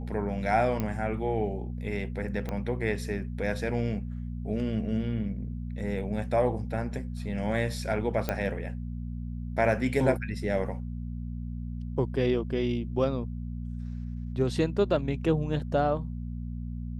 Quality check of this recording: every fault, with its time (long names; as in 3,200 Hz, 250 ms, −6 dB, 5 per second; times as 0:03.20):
mains hum 60 Hz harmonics 4 −35 dBFS
0:00.80: click −17 dBFS
0:02.49: click −20 dBFS
0:08.29: click −14 dBFS